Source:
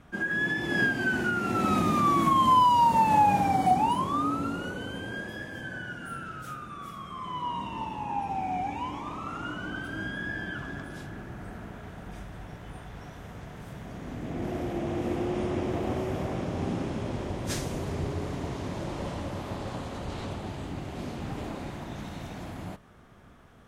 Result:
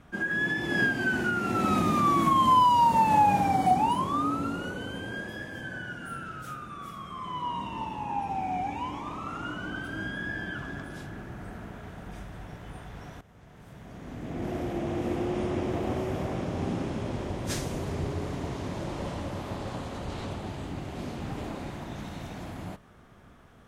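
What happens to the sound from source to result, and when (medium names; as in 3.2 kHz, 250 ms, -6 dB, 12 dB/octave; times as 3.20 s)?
13.21–14.51 s: fade in linear, from -16 dB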